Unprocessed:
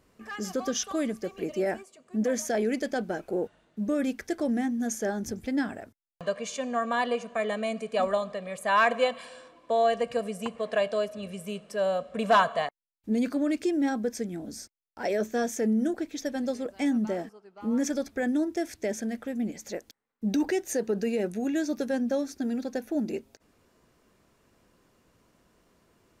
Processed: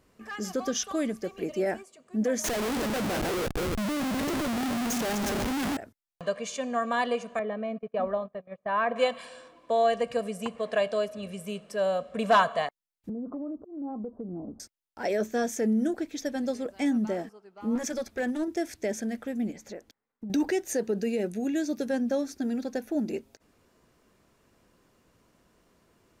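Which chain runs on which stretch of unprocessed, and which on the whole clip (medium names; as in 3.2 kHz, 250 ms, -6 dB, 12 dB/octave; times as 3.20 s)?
2.44–5.77 s: backward echo that repeats 153 ms, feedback 46%, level -8 dB + Schmitt trigger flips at -42 dBFS
7.39–8.96 s: gate -36 dBFS, range -24 dB + tape spacing loss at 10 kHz 44 dB
13.09–14.60 s: steep low-pass 1.2 kHz 72 dB/octave + compression 8:1, threshold -32 dBFS + slow attack 175 ms
17.75–18.48 s: overload inside the chain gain 22 dB + band-stop 280 Hz, Q 5.1
19.52–20.30 s: treble shelf 3.6 kHz -9.5 dB + compression 12:1, threshold -34 dBFS
20.88–21.86 s: high-pass 45 Hz + peaking EQ 1.1 kHz -4.5 dB 1.3 oct + band-stop 5.5 kHz, Q 29
whole clip: none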